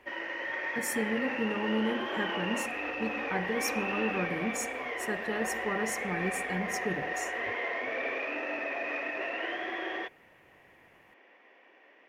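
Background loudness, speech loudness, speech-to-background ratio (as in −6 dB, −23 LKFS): −33.5 LKFS, −35.5 LKFS, −2.0 dB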